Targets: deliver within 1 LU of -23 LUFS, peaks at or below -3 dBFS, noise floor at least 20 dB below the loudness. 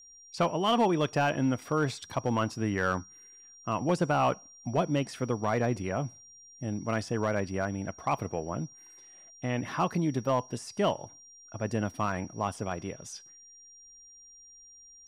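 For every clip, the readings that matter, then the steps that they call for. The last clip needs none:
clipped samples 0.3%; clipping level -18.5 dBFS; steady tone 5.7 kHz; tone level -51 dBFS; loudness -30.5 LUFS; peak level -18.5 dBFS; loudness target -23.0 LUFS
-> clip repair -18.5 dBFS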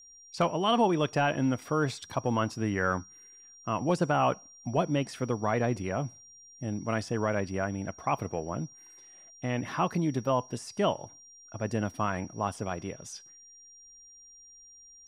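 clipped samples 0.0%; steady tone 5.7 kHz; tone level -51 dBFS
-> band-stop 5.7 kHz, Q 30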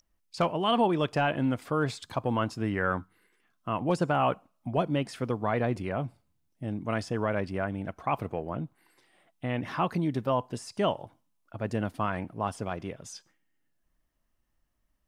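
steady tone not found; loudness -30.5 LUFS; peak level -15.5 dBFS; loudness target -23.0 LUFS
-> trim +7.5 dB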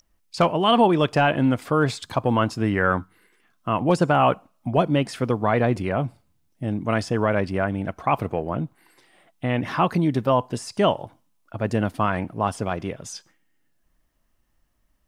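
loudness -23.0 LUFS; peak level -8.0 dBFS; noise floor -67 dBFS

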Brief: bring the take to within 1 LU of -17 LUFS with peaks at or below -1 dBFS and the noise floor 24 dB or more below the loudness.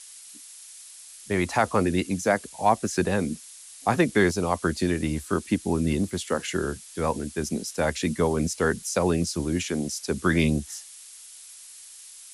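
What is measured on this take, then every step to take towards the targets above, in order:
noise floor -46 dBFS; noise floor target -50 dBFS; loudness -26.0 LUFS; peak level -6.0 dBFS; loudness target -17.0 LUFS
-> noise print and reduce 6 dB; trim +9 dB; peak limiter -1 dBFS

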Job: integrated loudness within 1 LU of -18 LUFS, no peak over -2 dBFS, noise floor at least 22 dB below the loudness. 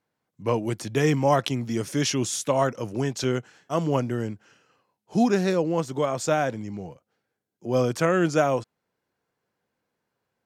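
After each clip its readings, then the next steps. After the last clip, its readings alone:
dropouts 1; longest dropout 3.1 ms; loudness -25.0 LUFS; peak level -7.0 dBFS; loudness target -18.0 LUFS
-> interpolate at 3.24 s, 3.1 ms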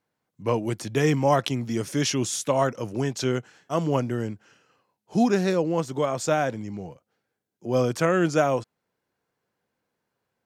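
dropouts 0; loudness -25.0 LUFS; peak level -7.0 dBFS; loudness target -18.0 LUFS
-> trim +7 dB; peak limiter -2 dBFS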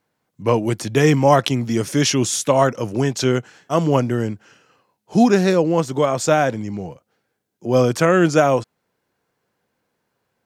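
loudness -18.0 LUFS; peak level -2.0 dBFS; noise floor -74 dBFS

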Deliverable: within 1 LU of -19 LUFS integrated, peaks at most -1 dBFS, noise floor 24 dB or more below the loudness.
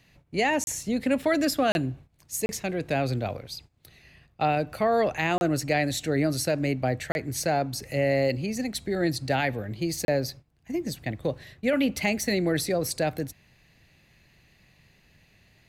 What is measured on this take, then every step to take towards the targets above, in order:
dropouts 6; longest dropout 31 ms; loudness -27.0 LUFS; peak level -13.5 dBFS; loudness target -19.0 LUFS
-> interpolate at 0.64/1.72/2.46/5.38/7.12/10.05 s, 31 ms; trim +8 dB

